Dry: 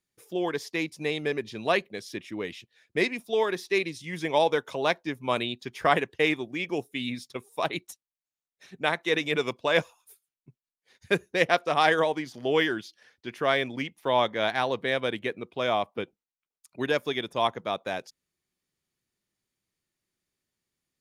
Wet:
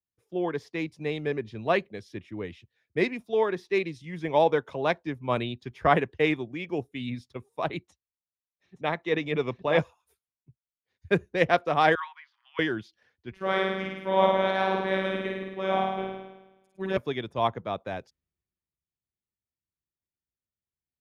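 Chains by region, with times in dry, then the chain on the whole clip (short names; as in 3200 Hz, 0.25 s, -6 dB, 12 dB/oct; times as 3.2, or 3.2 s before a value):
7.8–9.79 air absorption 68 m + notch 1500 Hz, Q 9.5 + echo 0.87 s -6 dB
11.95–12.59 steep high-pass 970 Hz 72 dB/oct + air absorption 310 m
13.31–16.97 flutter echo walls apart 9.1 m, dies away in 1.4 s + robotiser 191 Hz
whole clip: LPF 1900 Hz 6 dB/oct; bell 66 Hz +13 dB 1.7 oct; three-band expander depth 40%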